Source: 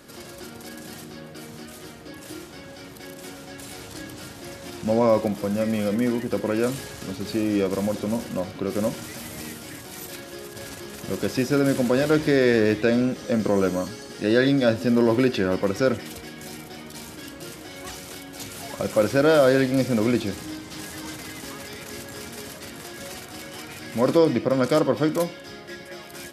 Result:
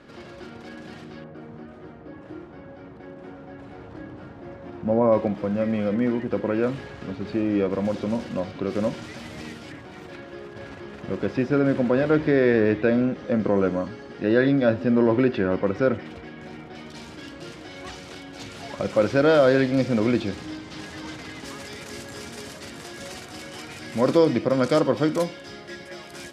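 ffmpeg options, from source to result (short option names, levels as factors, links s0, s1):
-af "asetnsamples=n=441:p=0,asendcmd='1.24 lowpass f 1300;5.12 lowpass f 2400;7.85 lowpass f 4100;9.72 lowpass f 2300;16.75 lowpass f 4600;21.45 lowpass f 8100',lowpass=3000"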